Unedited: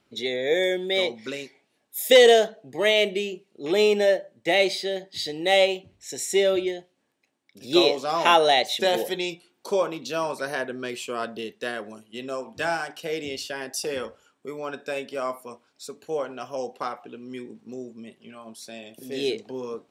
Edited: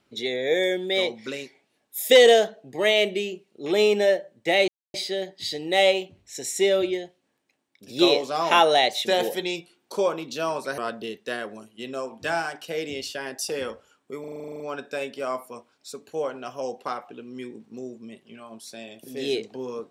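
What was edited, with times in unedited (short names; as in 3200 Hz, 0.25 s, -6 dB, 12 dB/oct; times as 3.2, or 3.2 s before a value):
4.68 insert silence 0.26 s
10.52–11.13 cut
14.55 stutter 0.04 s, 11 plays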